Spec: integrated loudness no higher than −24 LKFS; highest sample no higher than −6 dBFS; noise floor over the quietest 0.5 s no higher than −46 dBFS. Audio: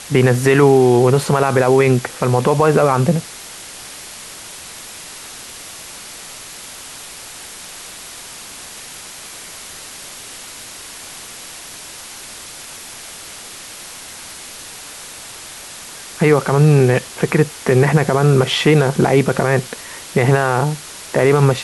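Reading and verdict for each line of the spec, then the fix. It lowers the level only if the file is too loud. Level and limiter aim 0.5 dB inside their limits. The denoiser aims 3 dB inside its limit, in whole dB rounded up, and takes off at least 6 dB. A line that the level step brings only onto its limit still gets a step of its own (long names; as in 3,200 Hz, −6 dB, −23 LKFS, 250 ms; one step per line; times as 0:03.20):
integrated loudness −14.5 LKFS: out of spec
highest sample −2.0 dBFS: out of spec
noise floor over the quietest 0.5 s −35 dBFS: out of spec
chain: broadband denoise 6 dB, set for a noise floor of −35 dBFS
level −10 dB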